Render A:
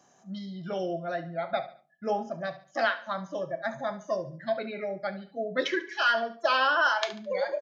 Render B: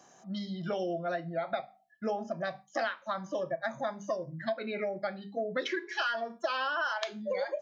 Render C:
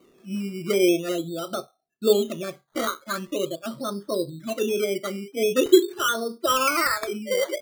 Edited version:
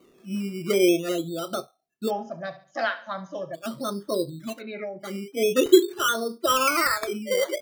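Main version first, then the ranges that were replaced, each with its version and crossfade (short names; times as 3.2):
C
2.08–3.56 from A, crossfade 0.06 s
4.54–5.07 from B, crossfade 0.16 s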